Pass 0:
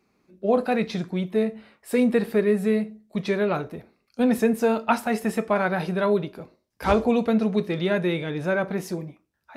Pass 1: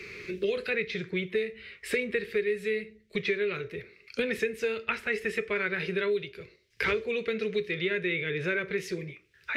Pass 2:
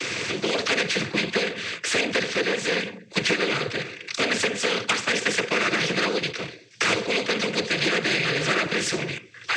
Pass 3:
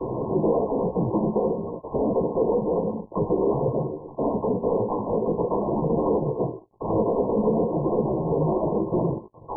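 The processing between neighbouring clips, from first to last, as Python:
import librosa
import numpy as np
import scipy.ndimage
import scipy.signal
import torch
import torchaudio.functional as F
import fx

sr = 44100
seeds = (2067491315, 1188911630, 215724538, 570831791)

y1 = fx.curve_eq(x, sr, hz=(110.0, 270.0, 410.0, 760.0, 2100.0, 12000.0), db=(0, -19, 2, -25, 9, -13))
y1 = fx.band_squash(y1, sr, depth_pct=100)
y1 = F.gain(torch.from_numpy(y1), -3.5).numpy()
y2 = fx.leveller(y1, sr, passes=1)
y2 = fx.noise_vocoder(y2, sr, seeds[0], bands=16)
y2 = fx.spectral_comp(y2, sr, ratio=2.0)
y2 = F.gain(torch.from_numpy(y2), 2.5).numpy()
y3 = fx.leveller(y2, sr, passes=5)
y3 = fx.brickwall_lowpass(y3, sr, high_hz=1100.0)
y3 = fx.chorus_voices(y3, sr, voices=2, hz=0.5, base_ms=16, depth_ms=3.1, mix_pct=40)
y3 = F.gain(torch.from_numpy(y3), -4.0).numpy()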